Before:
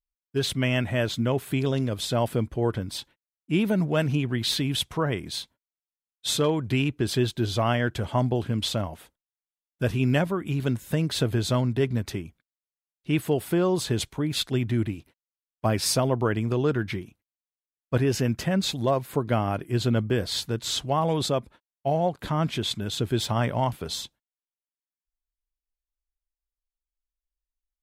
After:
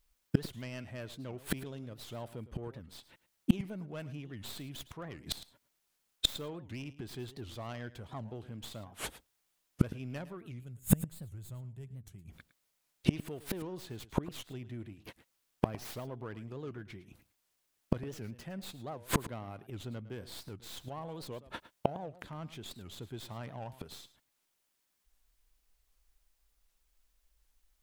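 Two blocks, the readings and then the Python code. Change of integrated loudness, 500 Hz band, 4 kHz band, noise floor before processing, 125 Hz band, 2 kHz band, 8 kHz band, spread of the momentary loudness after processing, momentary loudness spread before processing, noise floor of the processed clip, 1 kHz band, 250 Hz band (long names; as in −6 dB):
−13.5 dB, −16.5 dB, −13.0 dB, below −85 dBFS, −13.5 dB, −15.0 dB, −12.0 dB, 14 LU, 8 LU, −79 dBFS, −15.0 dB, −12.0 dB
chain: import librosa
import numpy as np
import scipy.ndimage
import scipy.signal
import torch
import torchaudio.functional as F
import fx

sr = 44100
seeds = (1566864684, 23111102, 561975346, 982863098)

p1 = fx.tracing_dist(x, sr, depth_ms=0.21)
p2 = fx.spec_box(p1, sr, start_s=10.59, length_s=1.69, low_hz=200.0, high_hz=6500.0, gain_db=-13)
p3 = 10.0 ** (-24.5 / 20.0) * np.tanh(p2 / 10.0 ** (-24.5 / 20.0))
p4 = p2 + (p3 * 10.0 ** (-3.5 / 20.0))
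p5 = fx.gate_flip(p4, sr, shuts_db=-24.0, range_db=-34)
p6 = p5 + fx.echo_single(p5, sr, ms=108, db=-16.0, dry=0)
p7 = fx.record_warp(p6, sr, rpm=78.0, depth_cents=250.0)
y = p7 * 10.0 ** (12.5 / 20.0)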